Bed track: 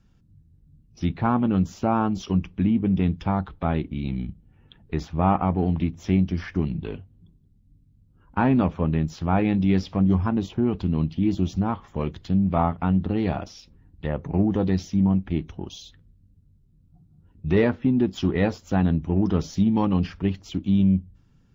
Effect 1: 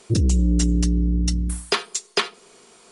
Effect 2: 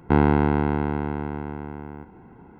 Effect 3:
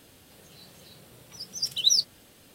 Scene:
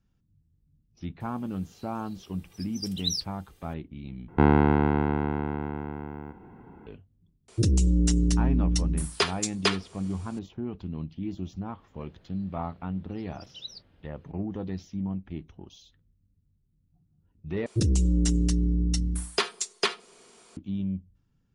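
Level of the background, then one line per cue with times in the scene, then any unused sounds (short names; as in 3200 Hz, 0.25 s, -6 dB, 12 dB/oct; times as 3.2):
bed track -11.5 dB
1.2 add 3 -9.5 dB + comb 2.5 ms, depth 60%
4.28 replace with 2 -1.5 dB
7.48 add 1 -3.5 dB
11.78 add 3 -7.5 dB + air absorption 380 m
17.66 replace with 1 -4.5 dB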